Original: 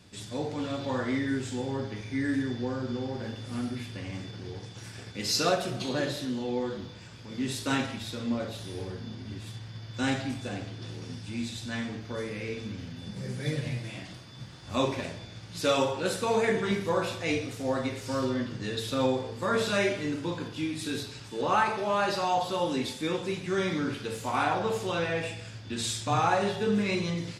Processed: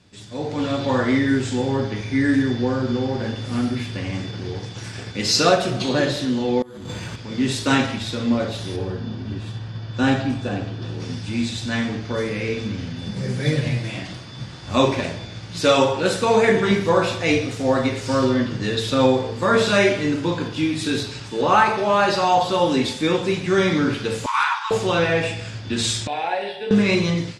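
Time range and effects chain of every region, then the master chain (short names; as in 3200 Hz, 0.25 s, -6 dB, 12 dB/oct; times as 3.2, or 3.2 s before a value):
6.62–7.16 negative-ratio compressor -45 dBFS + careless resampling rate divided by 4×, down filtered, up hold
8.76–11 high shelf 4100 Hz -10.5 dB + notch 2100 Hz, Q 7.2
24.26–24.71 steep high-pass 900 Hz 96 dB/oct + high shelf 5600 Hz -2.5 dB + overloaded stage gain 21.5 dB
26.07–26.71 HPF 1000 Hz + tilt shelf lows +7.5 dB, about 1300 Hz + fixed phaser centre 2900 Hz, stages 4
whole clip: Bessel low-pass 7800 Hz, order 4; AGC gain up to 10.5 dB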